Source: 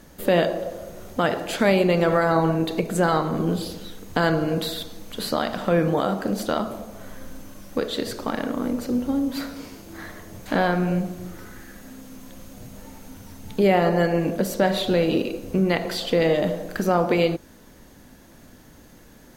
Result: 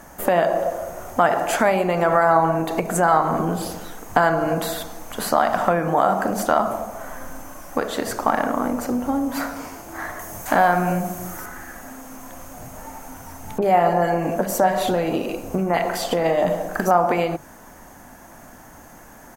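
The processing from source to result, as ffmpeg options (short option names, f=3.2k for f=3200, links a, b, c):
-filter_complex "[0:a]asettb=1/sr,asplit=3[a][b][c];[a]atrim=end=10.194[d];[b]atrim=start=10.19:end=11.46,asetpts=PTS-STARTPTS,afade=t=in:d=0.004:c=qsin,afade=t=out:st=1.266:d=0.004:c=qsin,aemphasis=mode=production:type=cd[e];[c]atrim=start=11.456[f];[d][e]acrossfade=d=0.004:c1=hsin:c2=qsin[g];[g][f]acrossfade=d=0.004:c1=qsin:c2=hsin,asettb=1/sr,asplit=3[h][i][j];[h]atrim=end=13.584[k];[i]atrim=start=13.58:end=16.91,asetpts=PTS-STARTPTS,afade=t=in:d=0.004:c=qsin,afade=t=out:st=3.326:d=0.004:c=qsin,acrossover=split=1700[l][m];[m]adelay=40[n];[l][n]amix=inputs=2:normalize=0,atrim=end_sample=146853[o];[j]atrim=start=16.906[p];[k][o]acrossfade=d=0.004:c1=hsin:c2=qsin[q];[q][p]acrossfade=d=0.004:c1=qsin:c2=hsin,bandreject=f=50:t=h:w=6,bandreject=f=100:t=h:w=6,bandreject=f=150:t=h:w=6,bandreject=f=200:t=h:w=6,acompressor=threshold=-21dB:ratio=6,firequalizer=gain_entry='entry(490,0);entry(710,12);entry(3900,-7);entry(6200,5)':delay=0.05:min_phase=1,volume=2dB"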